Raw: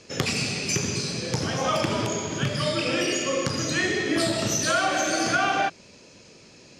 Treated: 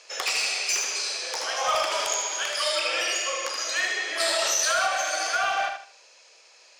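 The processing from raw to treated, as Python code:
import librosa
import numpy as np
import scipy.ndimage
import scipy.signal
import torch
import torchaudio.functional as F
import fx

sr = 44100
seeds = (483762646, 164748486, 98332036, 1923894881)

y = fx.rider(x, sr, range_db=10, speed_s=2.0)
y = scipy.signal.sosfilt(scipy.signal.butter(4, 630.0, 'highpass', fs=sr, output='sos'), y)
y = np.clip(y, -10.0 ** (-19.0 / 20.0), 10.0 ** (-19.0 / 20.0))
y = fx.high_shelf(y, sr, hz=5400.0, db=7.5, at=(1.92, 2.79))
y = fx.echo_feedback(y, sr, ms=77, feedback_pct=29, wet_db=-6)
y = fx.env_flatten(y, sr, amount_pct=70, at=(4.2, 4.88))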